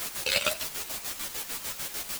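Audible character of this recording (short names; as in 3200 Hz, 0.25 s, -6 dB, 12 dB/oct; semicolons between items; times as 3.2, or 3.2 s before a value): a quantiser's noise floor 6-bit, dither triangular; chopped level 6.7 Hz, depth 60%, duty 50%; a shimmering, thickened sound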